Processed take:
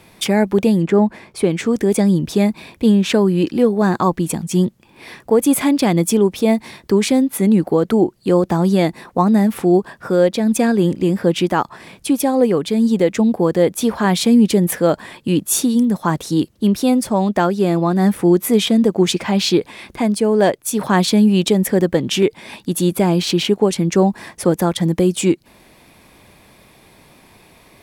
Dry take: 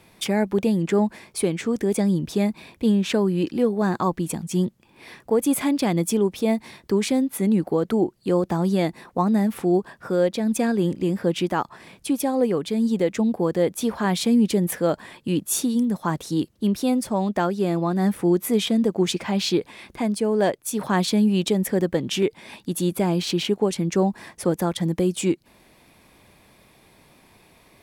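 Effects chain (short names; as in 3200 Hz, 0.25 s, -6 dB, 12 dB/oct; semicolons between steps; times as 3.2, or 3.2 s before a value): 0.84–1.49 high shelf 3000 Hz -> 4800 Hz -11.5 dB; gain +6.5 dB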